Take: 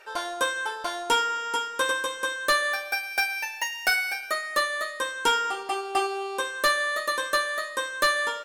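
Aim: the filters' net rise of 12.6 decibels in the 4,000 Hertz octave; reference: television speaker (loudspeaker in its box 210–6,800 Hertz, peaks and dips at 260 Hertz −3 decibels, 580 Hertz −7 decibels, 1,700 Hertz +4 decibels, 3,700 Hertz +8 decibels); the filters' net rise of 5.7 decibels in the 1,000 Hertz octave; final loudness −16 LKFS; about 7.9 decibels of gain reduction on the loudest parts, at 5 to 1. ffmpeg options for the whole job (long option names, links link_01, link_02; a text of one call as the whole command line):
ffmpeg -i in.wav -af "equalizer=frequency=1000:width_type=o:gain=6.5,equalizer=frequency=4000:width_type=o:gain=8.5,acompressor=threshold=-22dB:ratio=5,highpass=frequency=210:width=0.5412,highpass=frequency=210:width=1.3066,equalizer=frequency=260:width_type=q:width=4:gain=-3,equalizer=frequency=580:width_type=q:width=4:gain=-7,equalizer=frequency=1700:width_type=q:width=4:gain=4,equalizer=frequency=3700:width_type=q:width=4:gain=8,lowpass=frequency=6800:width=0.5412,lowpass=frequency=6800:width=1.3066,volume=7dB" out.wav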